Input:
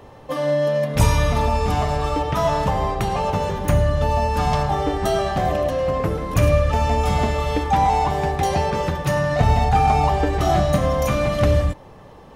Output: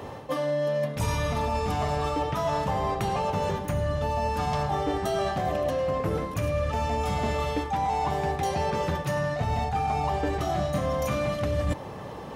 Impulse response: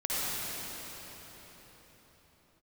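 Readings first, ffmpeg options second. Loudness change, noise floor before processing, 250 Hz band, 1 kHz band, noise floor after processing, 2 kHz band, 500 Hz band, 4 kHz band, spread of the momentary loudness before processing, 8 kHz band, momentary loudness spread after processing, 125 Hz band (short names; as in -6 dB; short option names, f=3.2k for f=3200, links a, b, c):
-7.5 dB, -43 dBFS, -7.0 dB, -7.0 dB, -38 dBFS, -6.5 dB, -6.5 dB, -6.5 dB, 5 LU, -7.5 dB, 2 LU, -9.0 dB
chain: -af "highpass=77,areverse,acompressor=threshold=-30dB:ratio=10,areverse,volume=6dB"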